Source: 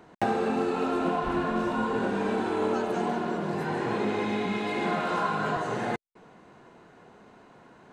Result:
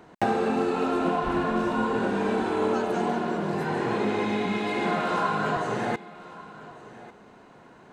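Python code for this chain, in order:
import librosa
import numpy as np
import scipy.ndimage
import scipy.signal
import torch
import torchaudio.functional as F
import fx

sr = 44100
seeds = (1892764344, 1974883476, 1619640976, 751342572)

y = x + 10.0 ** (-18.5 / 20.0) * np.pad(x, (int(1146 * sr / 1000.0), 0))[:len(x)]
y = y * librosa.db_to_amplitude(2.0)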